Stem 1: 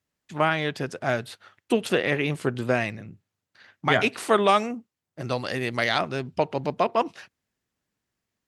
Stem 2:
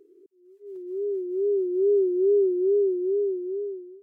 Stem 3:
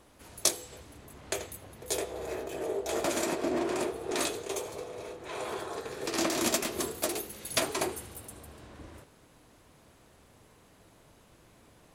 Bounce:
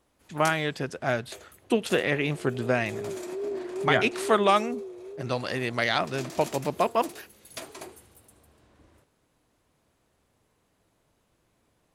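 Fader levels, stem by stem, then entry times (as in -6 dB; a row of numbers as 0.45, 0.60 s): -1.5, -12.0, -11.0 dB; 0.00, 1.55, 0.00 s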